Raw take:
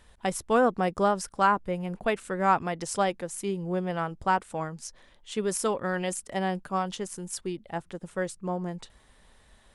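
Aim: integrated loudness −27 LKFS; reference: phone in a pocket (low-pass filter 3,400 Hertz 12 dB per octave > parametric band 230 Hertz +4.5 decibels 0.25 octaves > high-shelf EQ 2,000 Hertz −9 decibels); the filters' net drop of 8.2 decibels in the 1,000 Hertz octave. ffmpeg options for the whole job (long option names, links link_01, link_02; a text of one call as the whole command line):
ffmpeg -i in.wav -af "lowpass=3400,equalizer=frequency=230:width_type=o:width=0.25:gain=4.5,equalizer=frequency=1000:width_type=o:gain=-9,highshelf=frequency=2000:gain=-9,volume=5.5dB" out.wav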